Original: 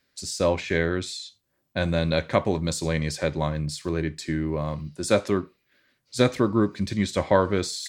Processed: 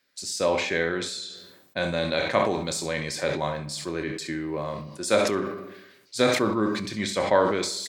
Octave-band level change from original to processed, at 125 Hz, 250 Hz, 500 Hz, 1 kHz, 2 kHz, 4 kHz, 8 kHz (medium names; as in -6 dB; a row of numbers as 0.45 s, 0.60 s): -8.0 dB, -3.0 dB, 0.0 dB, +2.0 dB, +2.0 dB, +2.5 dB, +1.5 dB